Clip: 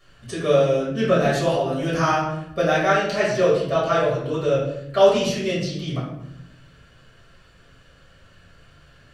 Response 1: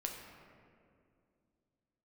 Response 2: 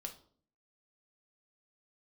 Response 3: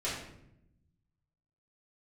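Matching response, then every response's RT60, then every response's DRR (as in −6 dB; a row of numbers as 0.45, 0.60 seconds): 3; 2.4, 0.55, 0.80 seconds; 1.0, 3.5, −9.0 decibels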